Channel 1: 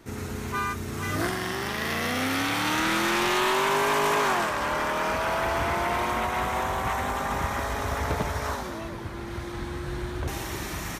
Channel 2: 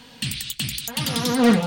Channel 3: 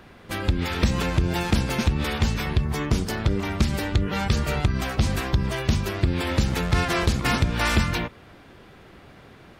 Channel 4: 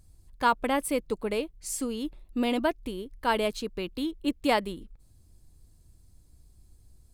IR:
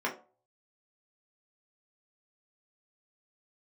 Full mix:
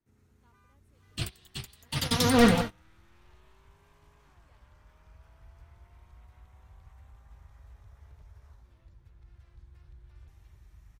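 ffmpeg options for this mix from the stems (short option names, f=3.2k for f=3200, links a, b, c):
-filter_complex "[0:a]bass=f=250:g=9,treble=f=4k:g=0,acrossover=split=100|230|3200[a][b][c][d];[a]acompressor=threshold=-29dB:ratio=4[e];[b]acompressor=threshold=-33dB:ratio=4[f];[c]acompressor=threshold=-27dB:ratio=4[g];[d]acompressor=threshold=-39dB:ratio=4[h];[e][f][g][h]amix=inputs=4:normalize=0,volume=-7.5dB[i];[1:a]adelay=950,volume=-1dB,asplit=2[j][k];[k]volume=-14dB[l];[2:a]acompressor=threshold=-22dB:ratio=6,adelay=2500,volume=-16.5dB[m];[3:a]volume=-17dB[n];[l]aecho=0:1:208:1[o];[i][j][m][n][o]amix=inputs=5:normalize=0,agate=range=-29dB:threshold=-24dB:ratio=16:detection=peak,asubboost=boost=10:cutoff=73"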